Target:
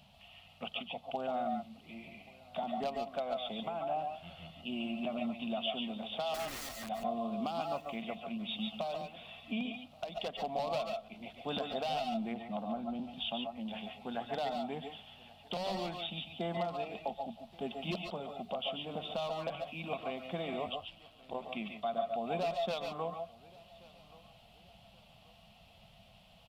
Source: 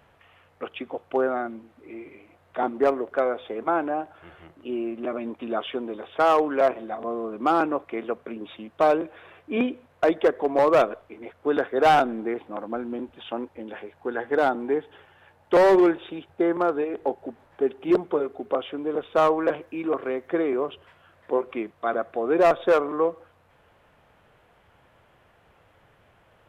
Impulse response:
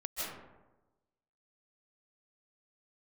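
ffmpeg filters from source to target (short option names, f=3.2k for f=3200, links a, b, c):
-filter_complex "[0:a]firequalizer=gain_entry='entry(100,0);entry(200,11);entry(310,-16);entry(460,-14);entry(670,4);entry(1000,-6);entry(1700,-14);entry(2700,9);entry(4500,14);entry(6500,5)':delay=0.05:min_phase=1,acompressor=threshold=-25dB:ratio=5,alimiter=limit=-22.5dB:level=0:latency=1:release=466,asettb=1/sr,asplit=3[a][b][c];[a]atrim=end=6.344[d];[b]atrim=start=6.34:end=6.89,asetpts=PTS-STARTPTS,afade=t=in:d=0.004:c=qsin,afade=t=out:st=0.546:d=0.004:c=qsin,aeval=exprs='(mod(59.6*val(0)+1,2)-1)/59.6':c=same[e];[c]atrim=start=6.886[f];[d][e]acrossfade=d=0.004:c1=hsin:c2=qsin[g];[g][f]acrossfade=d=0.004:c1=qsin:c2=hsin,asplit=3[h][i][j];[h]afade=t=out:st=20.65:d=0.02[k];[i]aeval=exprs='val(0)*sin(2*PI*58*n/s)':c=same,afade=t=in:st=20.65:d=0.02,afade=t=out:st=21.33:d=0.02[l];[j]afade=t=in:st=21.33:d=0.02[m];[k][l][m]amix=inputs=3:normalize=0,aecho=1:1:1129|2258|3387:0.0708|0.0276|0.0108[n];[1:a]atrim=start_sample=2205,atrim=end_sample=6615[o];[n][o]afir=irnorm=-1:irlink=0,asplit=3[p][q][r];[p]afade=t=out:st=12.32:d=0.02[s];[q]adynamicequalizer=threshold=0.00251:dfrequency=1600:dqfactor=0.7:tfrequency=1600:tqfactor=0.7:attack=5:release=100:ratio=0.375:range=3:mode=cutabove:tftype=highshelf,afade=t=in:st=12.32:d=0.02,afade=t=out:st=13.55:d=0.02[t];[r]afade=t=in:st=13.55:d=0.02[u];[s][t][u]amix=inputs=3:normalize=0"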